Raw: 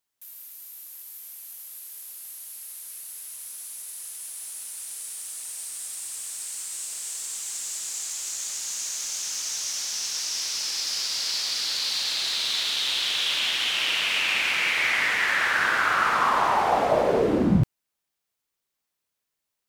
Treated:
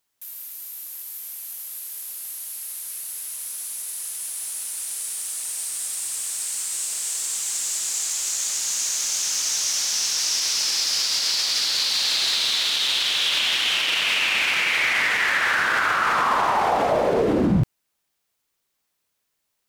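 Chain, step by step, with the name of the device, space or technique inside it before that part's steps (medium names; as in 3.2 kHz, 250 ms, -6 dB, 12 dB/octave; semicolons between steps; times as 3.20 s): clipper into limiter (hard clipper -12.5 dBFS, distortion -32 dB; peak limiter -19 dBFS, peak gain reduction 6.5 dB); trim +6.5 dB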